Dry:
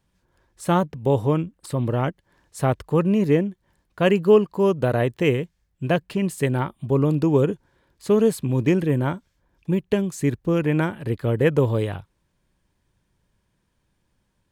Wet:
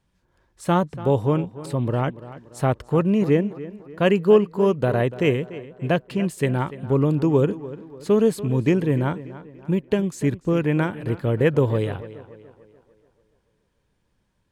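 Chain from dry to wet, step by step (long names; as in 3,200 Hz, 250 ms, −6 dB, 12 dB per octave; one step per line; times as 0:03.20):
high-shelf EQ 9,400 Hz −7 dB
on a send: tape delay 290 ms, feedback 48%, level −14.5 dB, low-pass 3,300 Hz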